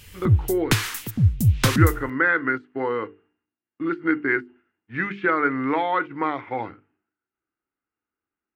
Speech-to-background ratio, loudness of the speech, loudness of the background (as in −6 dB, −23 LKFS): −3.0 dB, −25.0 LKFS, −22.0 LKFS